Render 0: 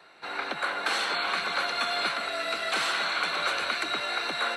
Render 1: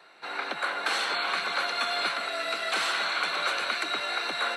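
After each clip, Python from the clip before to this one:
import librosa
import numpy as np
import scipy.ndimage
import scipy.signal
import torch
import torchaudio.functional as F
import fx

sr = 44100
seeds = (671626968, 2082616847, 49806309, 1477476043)

y = fx.low_shelf(x, sr, hz=130.0, db=-12.0)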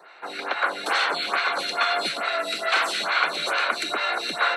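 y = fx.stagger_phaser(x, sr, hz=2.3)
y = F.gain(torch.from_numpy(y), 8.0).numpy()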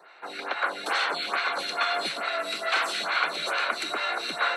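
y = x + 10.0 ** (-17.5 / 20.0) * np.pad(x, (int(1078 * sr / 1000.0), 0))[:len(x)]
y = F.gain(torch.from_numpy(y), -3.5).numpy()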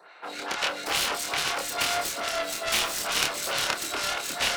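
y = fx.self_delay(x, sr, depth_ms=0.55)
y = fx.doubler(y, sr, ms=27.0, db=-4)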